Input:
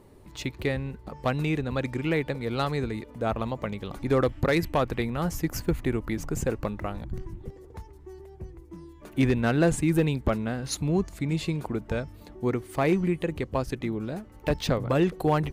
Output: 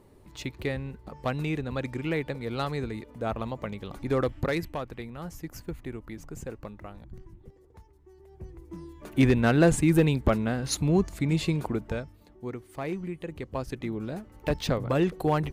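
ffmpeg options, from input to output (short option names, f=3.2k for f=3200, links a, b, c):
-af "volume=17.5dB,afade=t=out:st=4.4:d=0.43:silence=0.421697,afade=t=in:st=8.16:d=0.59:silence=0.237137,afade=t=out:st=11.64:d=0.54:silence=0.266073,afade=t=in:st=13.16:d=0.91:silence=0.398107"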